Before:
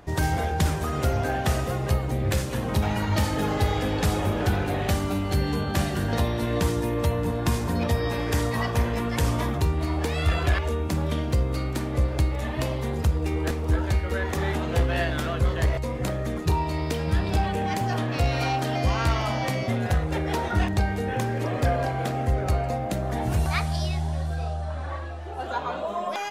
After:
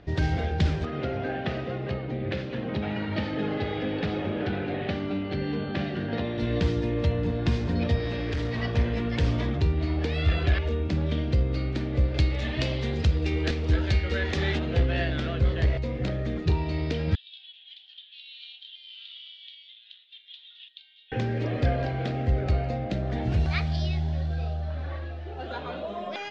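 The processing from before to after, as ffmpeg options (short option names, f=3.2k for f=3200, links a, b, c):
-filter_complex "[0:a]asettb=1/sr,asplit=3[a][b][c];[a]atrim=end=0.854[d];[b]atrim=start=0.85:end=6.38,asetpts=PTS-STARTPTS,afade=t=in:d=0.004:c=qsin,afade=t=out:st=5.526:d=0.004:c=qsin,highpass=160,lowpass=3.3k[e];[c]atrim=start=6.376[f];[d][e]acrossfade=d=0.004:c1=hsin:c2=qsin[g];[g][f]acrossfade=d=0.004:c1=qsin:c2=hsin,asettb=1/sr,asplit=3[h][i][j];[h]atrim=end=7.994[k];[i]atrim=start=7.99:end=8.63,asetpts=PTS-STARTPTS,afade=t=in:d=0.004:c=qsin,afade=t=out:st=0.636:d=0.004:c=qsin,asoftclip=type=hard:threshold=-24.5dB[l];[j]atrim=start=8.626[m];[k][l]acrossfade=d=0.004:c1=hsin:c2=qsin[n];[n][m]acrossfade=d=0.004:c1=qsin:c2=hsin,asettb=1/sr,asplit=3[o][p][q];[o]atrim=end=12.144[r];[p]atrim=start=12.14:end=14.59,asetpts=PTS-STARTPTS,afade=t=in:d=0.004:c=qsin,afade=t=out:st=2.446:d=0.004:c=qsin,highshelf=f=2.1k:g=10[s];[q]atrim=start=14.586[t];[r][s]acrossfade=d=0.004:c1=hsin:c2=qsin[u];[u][t]acrossfade=d=0.004:c1=qsin:c2=hsin,asettb=1/sr,asplit=3[v][w][x];[v]atrim=end=17.154[y];[w]atrim=start=17.15:end=21.12,asetpts=PTS-STARTPTS,afade=t=in:d=0.004:c=qsin,afade=t=out:st=3.966:d=0.004:c=qsin,asuperpass=centerf=3400:order=4:qfactor=4.2[z];[x]atrim=start=21.116[aa];[y][z]acrossfade=d=0.004:c1=hsin:c2=qsin[ab];[ab][aa]acrossfade=d=0.004:c1=qsin:c2=hsin,lowpass=f=4.5k:w=0.5412,lowpass=f=4.5k:w=1.3066,equalizer=f=1k:w=1.4:g=-11"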